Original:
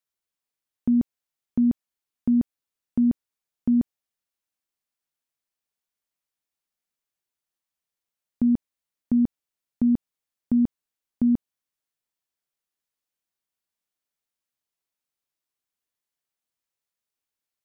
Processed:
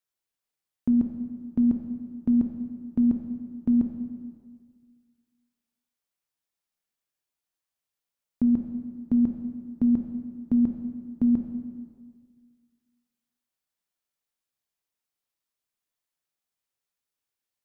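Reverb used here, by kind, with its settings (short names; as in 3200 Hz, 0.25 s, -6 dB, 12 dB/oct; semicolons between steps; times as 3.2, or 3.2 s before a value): plate-style reverb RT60 1.8 s, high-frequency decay 0.85×, DRR 4 dB; gain -1.5 dB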